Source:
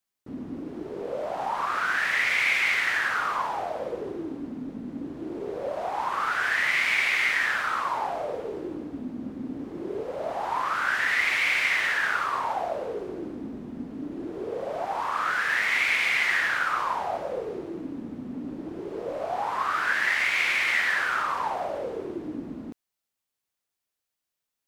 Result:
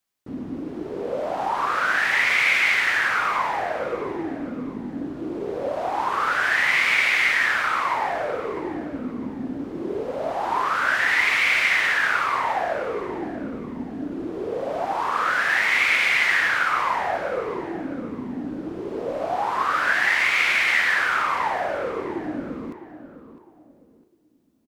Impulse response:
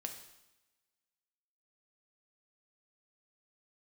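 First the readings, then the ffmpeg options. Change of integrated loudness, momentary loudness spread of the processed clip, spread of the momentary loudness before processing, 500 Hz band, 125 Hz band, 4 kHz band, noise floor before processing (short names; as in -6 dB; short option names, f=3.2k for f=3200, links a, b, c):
+4.5 dB, 14 LU, 15 LU, +4.5 dB, +4.5 dB, +4.0 dB, -85 dBFS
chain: -filter_complex "[0:a]asplit=2[a][b];[b]adelay=656,lowpass=f=2.7k:p=1,volume=-12.5dB,asplit=2[c][d];[d]adelay=656,lowpass=f=2.7k:p=1,volume=0.32,asplit=2[e][f];[f]adelay=656,lowpass=f=2.7k:p=1,volume=0.32[g];[a][c][e][g]amix=inputs=4:normalize=0,asplit=2[h][i];[1:a]atrim=start_sample=2205,lowpass=7.8k[j];[i][j]afir=irnorm=-1:irlink=0,volume=-12.5dB[k];[h][k]amix=inputs=2:normalize=0,volume=3dB"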